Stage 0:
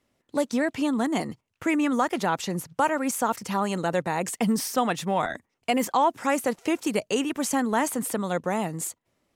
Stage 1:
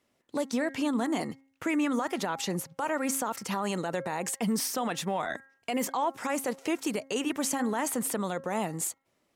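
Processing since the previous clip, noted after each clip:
low-shelf EQ 110 Hz −11 dB
brickwall limiter −20.5 dBFS, peak gain reduction 9.5 dB
hum removal 270 Hz, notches 8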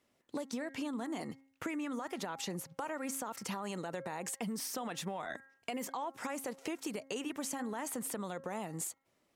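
downward compressor, threshold −34 dBFS, peak gain reduction 9.5 dB
level −2 dB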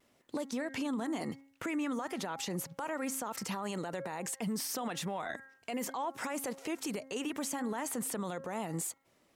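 brickwall limiter −34 dBFS, peak gain reduction 9.5 dB
pitch vibrato 0.83 Hz 29 cents
level +6 dB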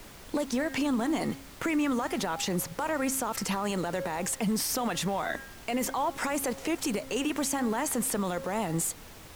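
background noise pink −55 dBFS
level +7 dB

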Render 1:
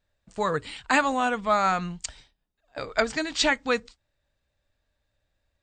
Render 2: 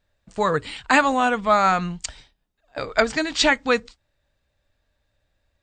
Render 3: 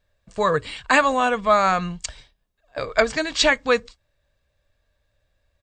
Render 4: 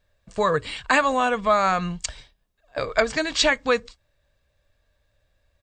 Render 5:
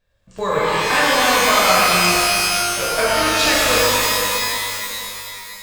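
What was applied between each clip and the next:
high-shelf EQ 7,800 Hz −4.5 dB; level +5 dB
comb filter 1.8 ms, depth 32%
downward compressor 1.5 to 1, threshold −23 dBFS, peak gain reduction 4.5 dB; level +1.5 dB
regular buffer underruns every 0.14 s, samples 256, zero, from 0:00.38; reverb with rising layers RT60 2.9 s, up +12 semitones, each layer −2 dB, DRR −8 dB; level −4 dB

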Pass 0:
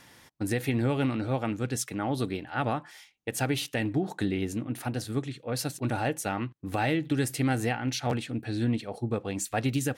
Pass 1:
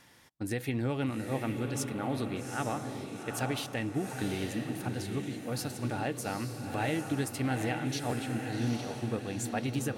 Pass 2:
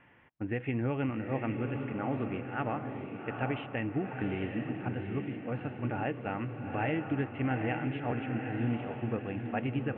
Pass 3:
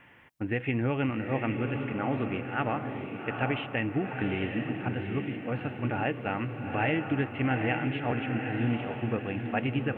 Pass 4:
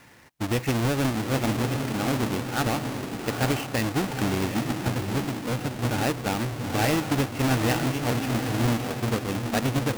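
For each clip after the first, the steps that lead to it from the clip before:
feedback delay with all-pass diffusion 808 ms, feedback 41%, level −5 dB; level −5 dB
Butterworth low-pass 2,900 Hz 72 dB per octave
high-shelf EQ 2,700 Hz +9.5 dB; level +3 dB
each half-wave held at its own peak

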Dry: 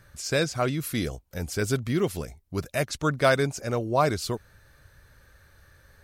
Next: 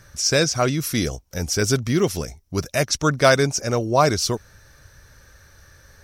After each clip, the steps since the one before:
parametric band 5,700 Hz +13 dB 0.31 octaves
level +5.5 dB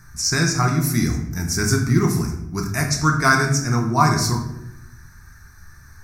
phaser with its sweep stopped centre 1,300 Hz, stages 4
rectangular room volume 220 cubic metres, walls mixed, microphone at 0.91 metres
level +2 dB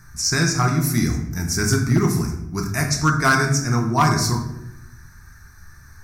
hard clipping −9.5 dBFS, distortion −20 dB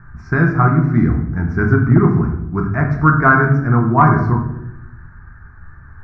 Chebyshev low-pass filter 1,500 Hz, order 3
level +6.5 dB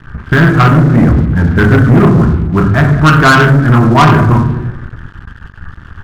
downsampling to 8,000 Hz
leveller curve on the samples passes 3

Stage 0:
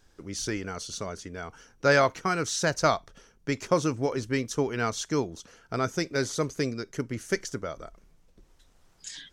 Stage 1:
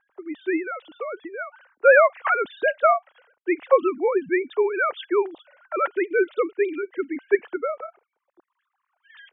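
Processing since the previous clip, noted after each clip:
three sine waves on the formant tracks
low-pass that shuts in the quiet parts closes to 1,400 Hz, open at −25 dBFS
level +6 dB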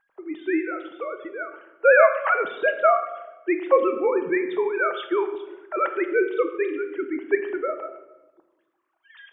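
rectangular room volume 530 cubic metres, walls mixed, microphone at 0.66 metres
level −1 dB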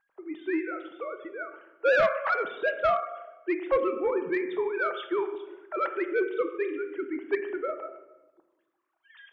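soft clipping −11.5 dBFS, distortion −15 dB
level −4.5 dB

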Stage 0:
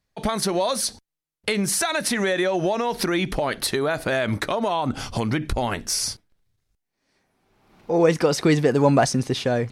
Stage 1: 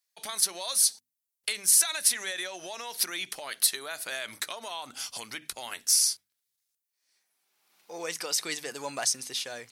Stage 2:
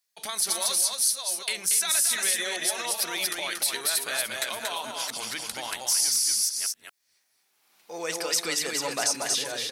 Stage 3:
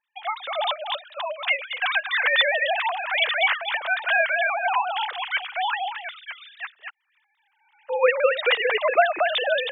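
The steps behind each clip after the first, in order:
first difference; mains-hum notches 50/100/150/200/250 Hz; level +3 dB
delay that plays each chunk backwards 476 ms, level −6 dB; single-tap delay 232 ms −4 dB; brickwall limiter −16 dBFS, peak gain reduction 8.5 dB; level +3 dB
three sine waves on the formant tracks; level +4 dB

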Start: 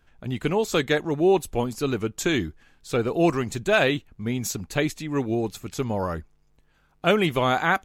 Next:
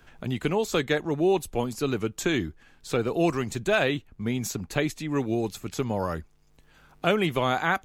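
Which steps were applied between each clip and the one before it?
multiband upward and downward compressor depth 40%
level −2.5 dB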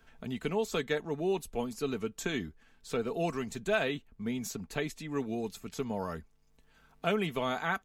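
comb filter 4.5 ms, depth 46%
level −8 dB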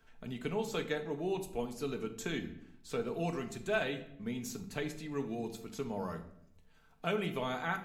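convolution reverb RT60 0.75 s, pre-delay 7 ms, DRR 7 dB
level −4.5 dB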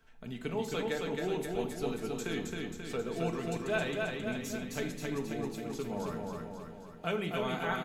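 repeating echo 268 ms, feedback 57%, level −3 dB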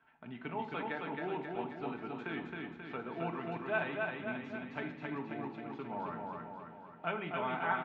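loudspeaker in its box 160–2,700 Hz, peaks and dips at 200 Hz −6 dB, 460 Hz −10 dB, 910 Hz +7 dB, 1,400 Hz +3 dB
level −1.5 dB

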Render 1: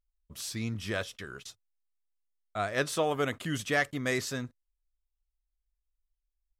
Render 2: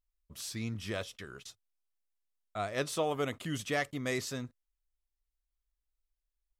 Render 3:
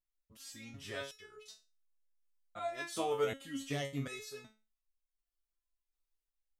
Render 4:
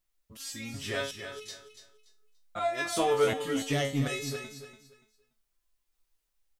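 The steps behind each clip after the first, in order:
dynamic equaliser 1,600 Hz, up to −6 dB, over −47 dBFS, Q 3.5; level −3 dB
automatic gain control gain up to 5 dB; step-sequenced resonator 2.7 Hz 110–540 Hz; level +3 dB
in parallel at −4 dB: soft clipping −38 dBFS, distortion −7 dB; on the sum: repeating echo 288 ms, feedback 25%, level −10 dB; level +6 dB

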